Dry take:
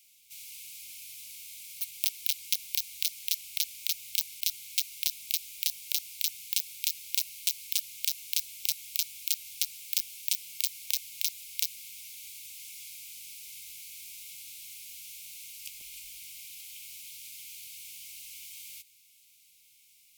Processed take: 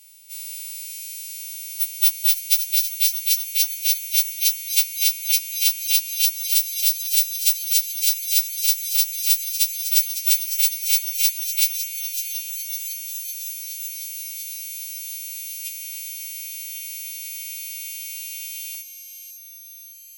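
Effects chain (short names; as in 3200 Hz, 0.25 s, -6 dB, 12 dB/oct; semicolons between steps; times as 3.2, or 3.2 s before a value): frequency quantiser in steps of 2 st; LFO high-pass saw up 0.16 Hz 720–2600 Hz; thin delay 0.555 s, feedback 69%, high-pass 3100 Hz, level -9 dB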